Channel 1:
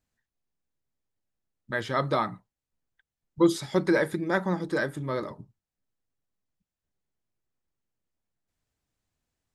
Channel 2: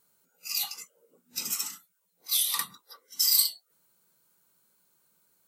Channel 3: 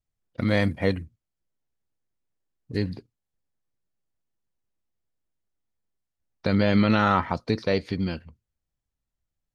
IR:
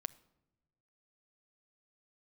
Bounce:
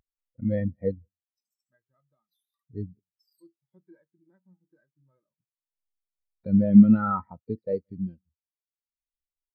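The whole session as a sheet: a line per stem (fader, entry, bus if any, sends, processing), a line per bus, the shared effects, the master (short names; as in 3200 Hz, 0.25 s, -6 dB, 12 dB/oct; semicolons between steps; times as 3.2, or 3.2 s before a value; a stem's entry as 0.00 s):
-10.5 dB, 0.00 s, no send, no echo send, spectral whitening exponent 0.6; auto duck -15 dB, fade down 0.95 s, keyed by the third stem
-13.5 dB, 0.00 s, no send, no echo send, dry
+2.0 dB, 0.00 s, no send, echo send -23 dB, dry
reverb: off
echo: echo 0.172 s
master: upward compressor, threshold -29 dBFS; spectral expander 2.5:1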